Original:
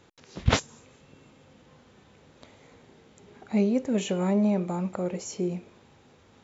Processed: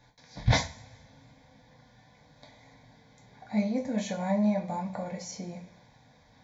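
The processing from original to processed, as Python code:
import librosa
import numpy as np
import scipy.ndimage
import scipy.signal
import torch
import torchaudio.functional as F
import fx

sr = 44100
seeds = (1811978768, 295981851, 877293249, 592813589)

y = fx.fixed_phaser(x, sr, hz=1900.0, stages=8)
y = fx.rev_double_slope(y, sr, seeds[0], early_s=0.31, late_s=1.8, knee_db=-26, drr_db=-0.5)
y = y * librosa.db_to_amplitude(-1.0)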